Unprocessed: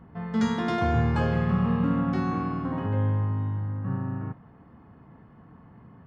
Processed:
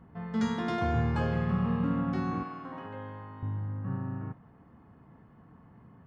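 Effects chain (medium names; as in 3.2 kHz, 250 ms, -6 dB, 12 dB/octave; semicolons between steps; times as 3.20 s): 2.43–3.43 s: high-pass 700 Hz 6 dB/octave; trim -4.5 dB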